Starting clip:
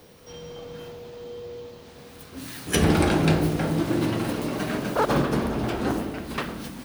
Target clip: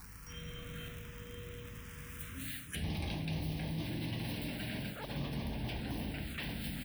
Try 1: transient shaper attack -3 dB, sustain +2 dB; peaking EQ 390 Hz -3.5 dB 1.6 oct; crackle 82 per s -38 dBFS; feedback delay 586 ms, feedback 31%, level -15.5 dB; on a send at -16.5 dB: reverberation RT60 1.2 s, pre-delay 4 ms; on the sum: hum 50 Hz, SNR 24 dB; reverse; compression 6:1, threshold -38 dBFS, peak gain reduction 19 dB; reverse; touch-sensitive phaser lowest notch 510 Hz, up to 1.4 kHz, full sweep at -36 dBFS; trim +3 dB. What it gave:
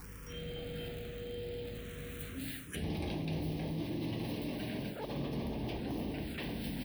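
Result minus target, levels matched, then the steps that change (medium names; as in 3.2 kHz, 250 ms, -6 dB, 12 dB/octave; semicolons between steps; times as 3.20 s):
500 Hz band +6.0 dB
change: peaking EQ 390 Hz -14.5 dB 1.6 oct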